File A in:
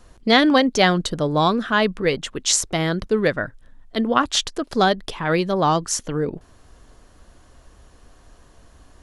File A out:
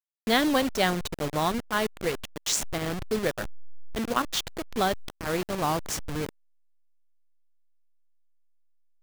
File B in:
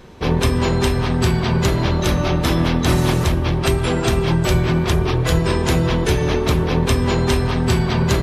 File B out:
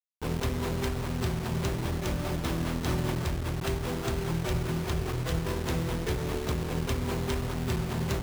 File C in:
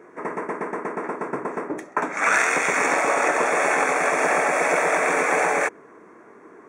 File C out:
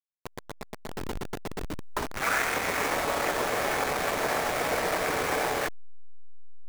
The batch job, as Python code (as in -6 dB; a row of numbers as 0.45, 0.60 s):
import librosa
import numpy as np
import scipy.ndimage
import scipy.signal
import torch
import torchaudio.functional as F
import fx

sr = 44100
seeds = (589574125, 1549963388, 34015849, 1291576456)

y = fx.delta_hold(x, sr, step_db=-19.0)
y = y * 10.0 ** (-30 / 20.0) / np.sqrt(np.mean(np.square(y)))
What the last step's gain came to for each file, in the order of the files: -7.5, -12.5, -6.5 dB